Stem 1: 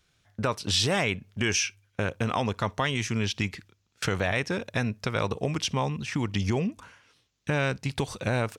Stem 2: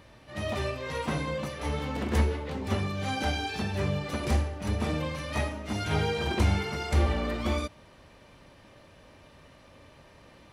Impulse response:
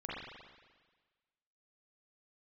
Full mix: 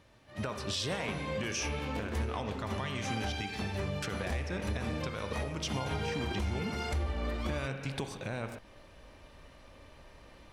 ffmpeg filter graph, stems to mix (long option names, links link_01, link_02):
-filter_complex "[0:a]highpass=74,volume=-7dB,asplit=2[link_01][link_02];[link_02]volume=-7dB[link_03];[1:a]asubboost=boost=4.5:cutoff=51,volume=-1.5dB,afade=type=in:start_time=0.8:duration=0.25:silence=0.446684[link_04];[2:a]atrim=start_sample=2205[link_05];[link_03][link_05]afir=irnorm=-1:irlink=0[link_06];[link_01][link_04][link_06]amix=inputs=3:normalize=0,alimiter=level_in=0.5dB:limit=-24dB:level=0:latency=1:release=310,volume=-0.5dB"